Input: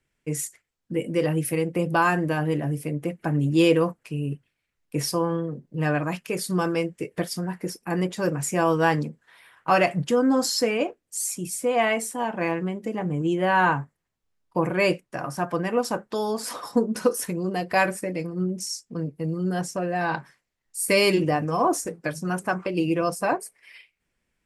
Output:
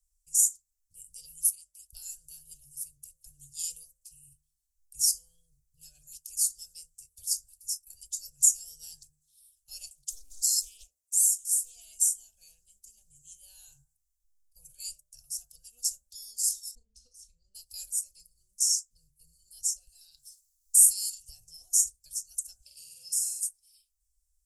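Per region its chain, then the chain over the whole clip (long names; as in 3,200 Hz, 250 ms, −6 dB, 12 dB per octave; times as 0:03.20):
0:01.50–0:01.93: high-pass filter 700 Hz 24 dB per octave + high-shelf EQ 9,400 Hz −4 dB + ring modulation 120 Hz
0:09.89–0:11.76: high-pass filter 460 Hz 6 dB per octave + dynamic equaliser 6,300 Hz, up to −8 dB, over −44 dBFS, Q 2.1 + highs frequency-modulated by the lows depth 0.31 ms
0:16.75–0:17.55: head-to-tape spacing loss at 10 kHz 31 dB + double-tracking delay 36 ms −12.5 dB
0:19.87–0:21.29: downward compressor 2.5 to 1, threshold −37 dBFS + high-shelf EQ 2,000 Hz +12 dB
0:22.60–0:23.41: high-pass filter 150 Hz + flutter between parallel walls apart 8.1 metres, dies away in 1 s
whole clip: inverse Chebyshev band-stop filter 170–2,100 Hz, stop band 60 dB; hum removal 75.14 Hz, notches 22; dynamic equaliser 6,900 Hz, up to +6 dB, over −50 dBFS, Q 2.1; level +6.5 dB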